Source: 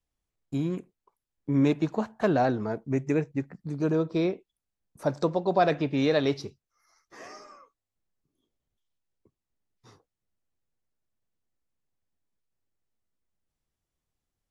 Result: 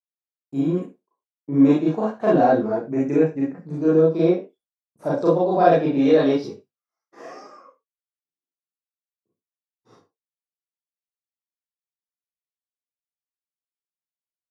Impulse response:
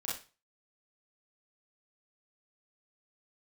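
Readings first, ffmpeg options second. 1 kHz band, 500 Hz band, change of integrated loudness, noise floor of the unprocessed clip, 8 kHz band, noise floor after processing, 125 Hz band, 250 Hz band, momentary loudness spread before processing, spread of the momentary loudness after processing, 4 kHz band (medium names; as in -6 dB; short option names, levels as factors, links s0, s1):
+7.5 dB, +8.5 dB, +8.0 dB, under -85 dBFS, no reading, under -85 dBFS, +3.0 dB, +8.0 dB, 14 LU, 11 LU, -0.5 dB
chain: -filter_complex "[0:a]agate=range=0.0224:threshold=0.00282:ratio=3:detection=peak,highpass=120,equalizer=f=420:w=0.38:g=10.5[s0];[1:a]atrim=start_sample=2205,afade=t=out:st=0.2:d=0.01,atrim=end_sample=9261[s1];[s0][s1]afir=irnorm=-1:irlink=0,volume=0.631"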